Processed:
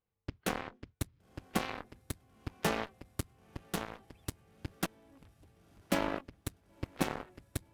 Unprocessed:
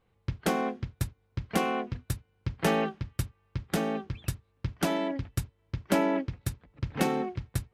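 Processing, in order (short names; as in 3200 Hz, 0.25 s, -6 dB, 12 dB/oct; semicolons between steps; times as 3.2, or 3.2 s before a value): 4.86–5.82 negative-ratio compressor -38 dBFS, ratio -0.5; diffused feedback echo 1.001 s, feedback 44%, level -12.5 dB; added harmonics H 3 -42 dB, 5 -38 dB, 7 -15 dB, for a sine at -11.5 dBFS; gain -4.5 dB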